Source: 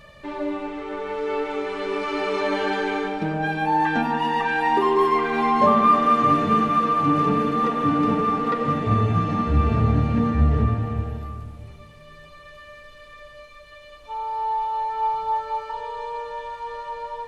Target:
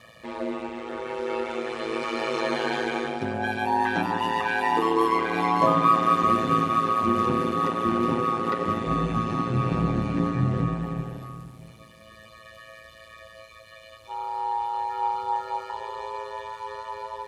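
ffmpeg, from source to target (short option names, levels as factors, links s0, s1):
-af "aeval=exprs='val(0)*sin(2*PI*56*n/s)':c=same,highpass=91,aemphasis=mode=production:type=cd"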